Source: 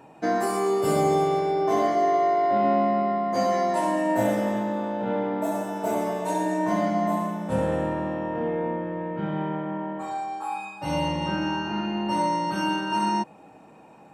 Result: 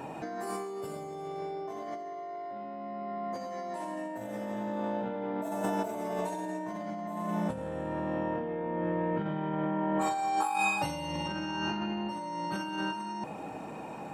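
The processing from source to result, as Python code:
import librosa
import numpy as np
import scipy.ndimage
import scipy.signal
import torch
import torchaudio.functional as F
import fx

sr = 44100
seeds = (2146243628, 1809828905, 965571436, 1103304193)

y = fx.high_shelf(x, sr, hz=4200.0, db=9.0, at=(10.01, 11.77))
y = fx.over_compress(y, sr, threshold_db=-35.0, ratio=-1.0)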